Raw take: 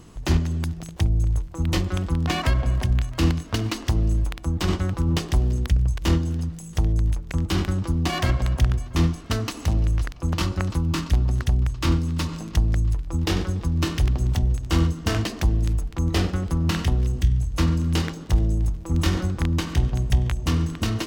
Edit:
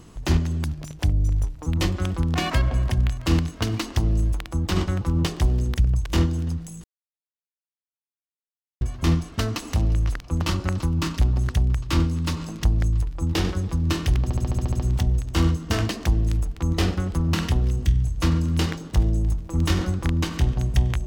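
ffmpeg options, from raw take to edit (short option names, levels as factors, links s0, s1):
-filter_complex "[0:a]asplit=13[s0][s1][s2][s3][s4][s5][s6][s7][s8][s9][s10][s11][s12];[s0]atrim=end=0.664[s13];[s1]atrim=start=0.66:end=1.58,asetpts=PTS-STARTPTS,asetrate=40572,aresample=44100[s14];[s2]atrim=start=1.576:end=6.76,asetpts=PTS-STARTPTS,afade=t=out:st=5.18:d=0.004:c=hsin[s15];[s3]atrim=start=6.76:end=8.73,asetpts=PTS-STARTPTS,volume=0[s16];[s4]atrim=start=8.73:end=14.222,asetpts=PTS-STARTPTS,afade=t=in:d=0.004:c=hsin[s17];[s5]atrim=start=14.148:end=14.222[s18];[s6]atrim=start=14.148:end=14.222[s19];[s7]atrim=start=14.148:end=14.222[s20];[s8]atrim=start=14.148:end=14.222[s21];[s9]atrim=start=14.148:end=14.222[s22];[s10]atrim=start=14.148:end=14.222[s23];[s11]atrim=start=14.148:end=14.222[s24];[s12]atrim=start=14.148[s25];[s13][s14]acrossfade=d=0.004:c1=hsin:c2=hsin[s26];[s15][s16][s17]concat=n=3:v=0:a=1[s27];[s26][s27]acrossfade=d=0.004:c1=hsin:c2=hsin[s28];[s28][s18]acrossfade=d=0.004:c1=hsin:c2=hsin[s29];[s29][s19]acrossfade=d=0.004:c1=hsin:c2=hsin[s30];[s30][s20]acrossfade=d=0.004:c1=hsin:c2=hsin[s31];[s31][s21]acrossfade=d=0.004:c1=hsin:c2=hsin[s32];[s32][s22]acrossfade=d=0.004:c1=hsin:c2=hsin[s33];[s33][s23]acrossfade=d=0.004:c1=hsin:c2=hsin[s34];[s34][s24]acrossfade=d=0.004:c1=hsin:c2=hsin[s35];[s35][s25]acrossfade=d=0.004:c1=hsin:c2=hsin"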